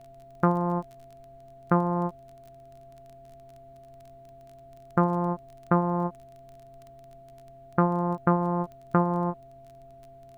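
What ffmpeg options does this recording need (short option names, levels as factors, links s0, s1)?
-af "adeclick=t=4,bandreject=f=131.8:t=h:w=4,bandreject=f=263.6:t=h:w=4,bandreject=f=395.4:t=h:w=4,bandreject=f=680:w=30,agate=range=0.0891:threshold=0.00794"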